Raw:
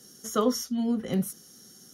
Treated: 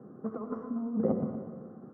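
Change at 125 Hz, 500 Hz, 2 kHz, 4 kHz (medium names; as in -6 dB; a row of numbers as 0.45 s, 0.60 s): -4.0 dB, -4.5 dB, under -10 dB, under -40 dB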